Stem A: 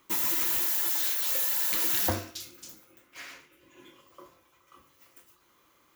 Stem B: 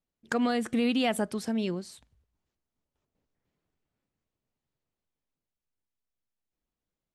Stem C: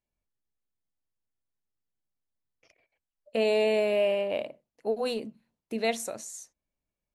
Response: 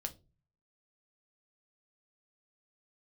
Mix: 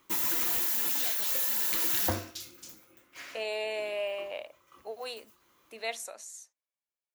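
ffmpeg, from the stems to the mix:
-filter_complex "[0:a]volume=-1.5dB[link_01];[1:a]highpass=frequency=1400:poles=1,volume=-11.5dB[link_02];[2:a]highpass=730,dynaudnorm=framelen=160:gausssize=9:maxgain=4dB,volume=-7.5dB[link_03];[link_01][link_02][link_03]amix=inputs=3:normalize=0"

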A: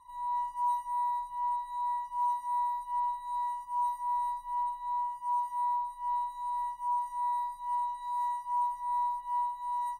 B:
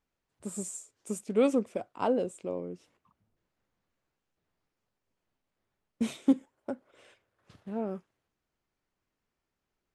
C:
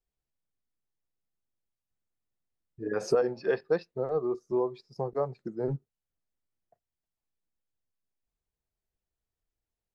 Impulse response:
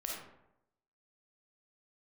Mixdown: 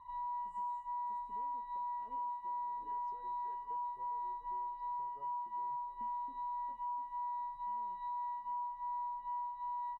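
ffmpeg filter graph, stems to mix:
-filter_complex "[0:a]lowpass=3200,volume=3dB[link_01];[1:a]flanger=delay=8:depth=9.6:regen=65:speed=0.78:shape=sinusoidal,volume=-17dB,asplit=2[link_02][link_03];[link_03]volume=-18dB[link_04];[2:a]volume=-19.5dB,asplit=2[link_05][link_06];[link_06]volume=-23dB[link_07];[link_02][link_05]amix=inputs=2:normalize=0,acompressor=threshold=-57dB:ratio=2.5,volume=0dB[link_08];[link_04][link_07]amix=inputs=2:normalize=0,aecho=0:1:697|1394|2091|2788|3485|4182:1|0.43|0.185|0.0795|0.0342|0.0147[link_09];[link_01][link_08][link_09]amix=inputs=3:normalize=0,highshelf=frequency=4200:gain=-11.5,acompressor=threshold=-40dB:ratio=5"

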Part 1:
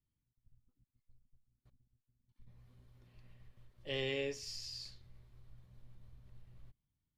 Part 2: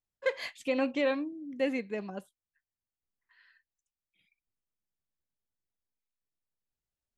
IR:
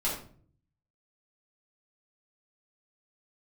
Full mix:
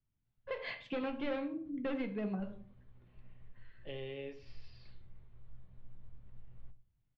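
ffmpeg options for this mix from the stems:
-filter_complex "[0:a]acrossover=split=960|2800[link_01][link_02][link_03];[link_01]acompressor=threshold=-45dB:ratio=4[link_04];[link_02]acompressor=threshold=-56dB:ratio=4[link_05];[link_03]acompressor=threshold=-51dB:ratio=4[link_06];[link_04][link_05][link_06]amix=inputs=3:normalize=0,highshelf=frequency=3500:gain=-10,volume=0.5dB,asplit=3[link_07][link_08][link_09];[link_08]volume=-17dB[link_10];[1:a]equalizer=frequency=130:width=1.5:gain=12.5,volume=27.5dB,asoftclip=hard,volume=-27.5dB,acompressor=threshold=-36dB:ratio=5,adelay=250,volume=-1.5dB,asplit=2[link_11][link_12];[link_12]volume=-11.5dB[link_13];[link_09]apad=whole_len=327402[link_14];[link_11][link_14]sidechaincompress=threshold=-60dB:ratio=8:attack=32:release=646[link_15];[2:a]atrim=start_sample=2205[link_16];[link_10][link_13]amix=inputs=2:normalize=0[link_17];[link_17][link_16]afir=irnorm=-1:irlink=0[link_18];[link_07][link_15][link_18]amix=inputs=3:normalize=0,lowpass=frequency=3600:width=0.5412,lowpass=frequency=3600:width=1.3066"

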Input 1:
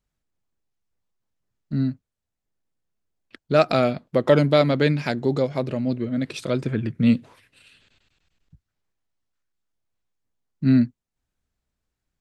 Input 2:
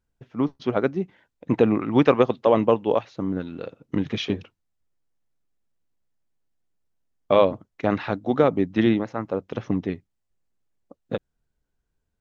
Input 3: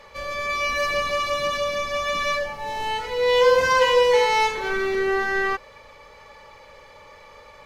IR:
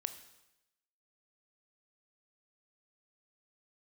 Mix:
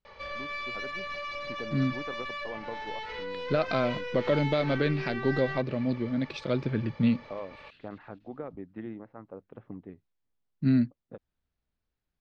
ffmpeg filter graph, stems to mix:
-filter_complex "[0:a]alimiter=limit=-10.5dB:level=0:latency=1:release=175,volume=-4.5dB[link_01];[1:a]lowpass=1500,volume=-17dB[link_02];[2:a]acompressor=threshold=-26dB:ratio=2.5,aeval=exprs='(tanh(28.2*val(0)+0.5)-tanh(0.5))/28.2':channel_layout=same,adelay=50,volume=-1.5dB[link_03];[link_02][link_03]amix=inputs=2:normalize=0,adynamicequalizer=threshold=0.00282:dfrequency=2000:dqfactor=1.3:tfrequency=2000:tqfactor=1.3:attack=5:release=100:ratio=0.375:range=2.5:mode=boostabove:tftype=bell,acompressor=threshold=-37dB:ratio=2,volume=0dB[link_04];[link_01][link_04]amix=inputs=2:normalize=0,lowpass=frequency=4900:width=0.5412,lowpass=frequency=4900:width=1.3066"

